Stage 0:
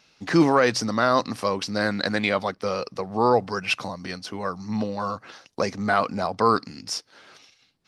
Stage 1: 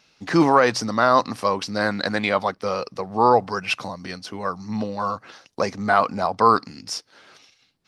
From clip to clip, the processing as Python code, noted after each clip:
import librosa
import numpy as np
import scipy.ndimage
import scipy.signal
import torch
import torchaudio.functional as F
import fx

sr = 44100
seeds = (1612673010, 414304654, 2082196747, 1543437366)

y = fx.dynamic_eq(x, sr, hz=930.0, q=1.2, threshold_db=-32.0, ratio=4.0, max_db=6)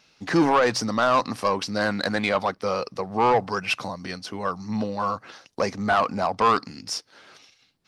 y = 10.0 ** (-12.5 / 20.0) * np.tanh(x / 10.0 ** (-12.5 / 20.0))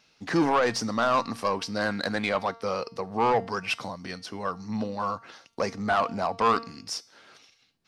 y = fx.comb_fb(x, sr, f0_hz=230.0, decay_s=0.56, harmonics='all', damping=0.0, mix_pct=50)
y = F.gain(torch.from_numpy(y), 2.0).numpy()